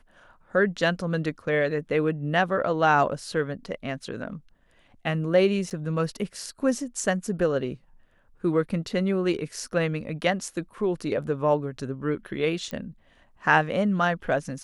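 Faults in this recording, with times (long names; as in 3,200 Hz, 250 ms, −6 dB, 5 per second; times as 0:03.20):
0:05.70–0:05.71: drop-out 7.8 ms
0:12.71: click −19 dBFS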